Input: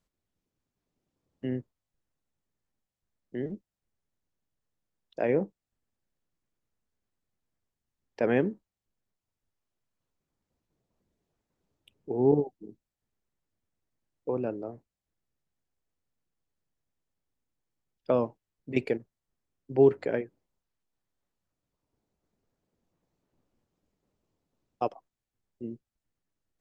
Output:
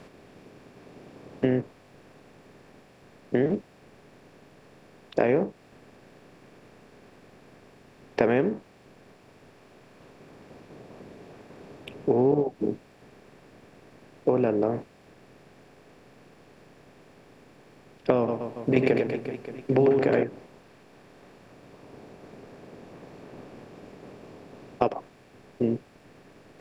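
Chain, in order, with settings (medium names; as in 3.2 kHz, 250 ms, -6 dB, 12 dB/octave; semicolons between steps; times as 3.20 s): spectral levelling over time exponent 0.6; compression 5:1, threshold -28 dBFS, peak gain reduction 13 dB; 18.18–20.23 s: reverse bouncing-ball echo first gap 100 ms, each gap 1.25×, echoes 5; trim +9 dB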